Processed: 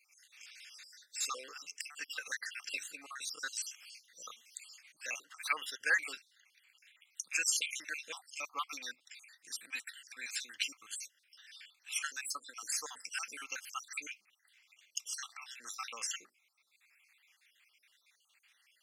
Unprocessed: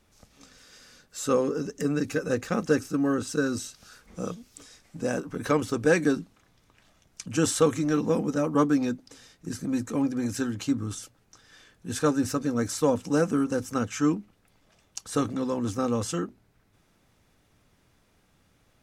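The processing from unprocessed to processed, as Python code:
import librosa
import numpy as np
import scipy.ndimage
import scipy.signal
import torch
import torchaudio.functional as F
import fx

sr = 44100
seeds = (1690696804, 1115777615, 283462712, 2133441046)

y = fx.spec_dropout(x, sr, seeds[0], share_pct=58)
y = fx.highpass_res(y, sr, hz=2300.0, q=2.8)
y = y * librosa.db_to_amplitude(1.0)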